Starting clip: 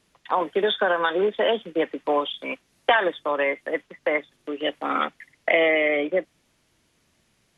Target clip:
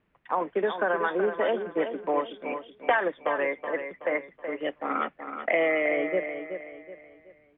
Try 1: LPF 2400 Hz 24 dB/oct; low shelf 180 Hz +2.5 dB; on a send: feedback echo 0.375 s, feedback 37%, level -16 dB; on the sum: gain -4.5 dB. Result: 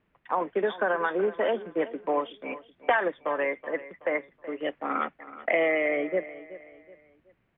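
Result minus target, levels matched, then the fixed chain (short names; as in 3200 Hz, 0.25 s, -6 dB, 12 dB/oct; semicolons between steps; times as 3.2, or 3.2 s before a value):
echo-to-direct -7.5 dB
LPF 2400 Hz 24 dB/oct; low shelf 180 Hz +2.5 dB; on a send: feedback echo 0.375 s, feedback 37%, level -8.5 dB; on the sum: gain -4.5 dB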